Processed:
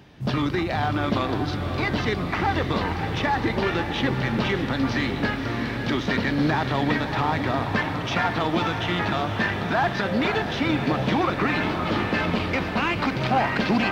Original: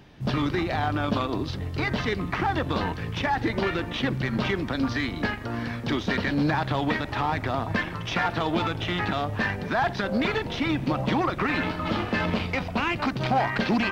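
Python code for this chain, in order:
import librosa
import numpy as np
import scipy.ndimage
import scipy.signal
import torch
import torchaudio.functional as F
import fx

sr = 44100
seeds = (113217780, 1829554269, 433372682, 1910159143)

p1 = scipy.signal.sosfilt(scipy.signal.butter(2, 45.0, 'highpass', fs=sr, output='sos'), x)
p2 = p1 + fx.echo_diffused(p1, sr, ms=563, feedback_pct=66, wet_db=-7.5, dry=0)
y = F.gain(torch.from_numpy(p2), 1.5).numpy()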